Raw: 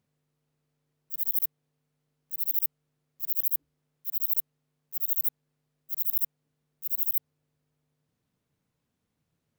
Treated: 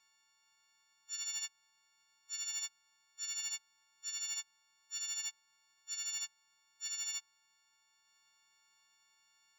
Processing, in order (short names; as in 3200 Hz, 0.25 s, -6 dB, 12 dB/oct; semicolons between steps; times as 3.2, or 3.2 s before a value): frequency quantiser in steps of 4 st; brick-wall FIR band-pass 720–7200 Hz; sample leveller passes 1; gain +6.5 dB